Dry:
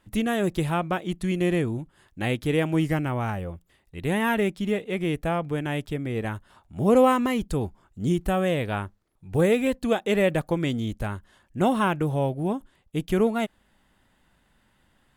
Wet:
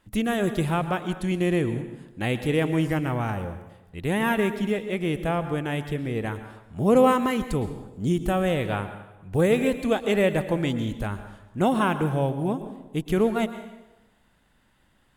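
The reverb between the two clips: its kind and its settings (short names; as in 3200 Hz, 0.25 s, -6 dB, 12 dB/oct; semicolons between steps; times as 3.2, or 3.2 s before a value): plate-style reverb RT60 1 s, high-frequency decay 0.8×, pre-delay 0.1 s, DRR 10.5 dB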